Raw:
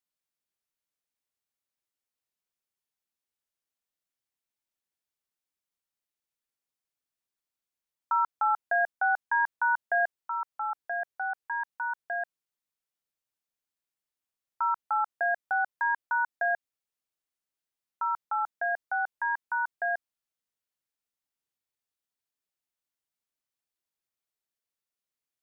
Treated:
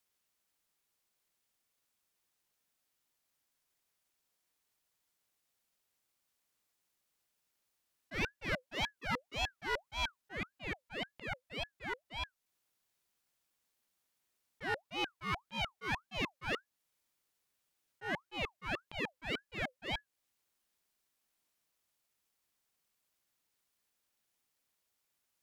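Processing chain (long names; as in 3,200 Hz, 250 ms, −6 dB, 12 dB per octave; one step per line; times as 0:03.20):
asymmetric clip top −35.5 dBFS, bottom −22 dBFS
volume swells 466 ms
ring modulator whose carrier an LFO sweeps 1,100 Hz, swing 55%, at 1.8 Hz
level +11.5 dB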